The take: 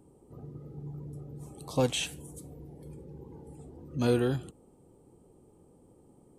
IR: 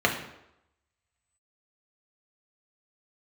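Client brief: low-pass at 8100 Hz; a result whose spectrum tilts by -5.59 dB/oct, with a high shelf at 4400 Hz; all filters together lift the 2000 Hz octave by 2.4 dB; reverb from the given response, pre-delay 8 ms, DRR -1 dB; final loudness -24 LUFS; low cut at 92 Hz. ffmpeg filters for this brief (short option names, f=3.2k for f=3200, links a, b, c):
-filter_complex "[0:a]highpass=92,lowpass=8.1k,equalizer=f=2k:t=o:g=4.5,highshelf=f=4.4k:g=-3,asplit=2[a][b];[1:a]atrim=start_sample=2205,adelay=8[c];[b][c]afir=irnorm=-1:irlink=0,volume=-14.5dB[d];[a][d]amix=inputs=2:normalize=0,volume=2.5dB"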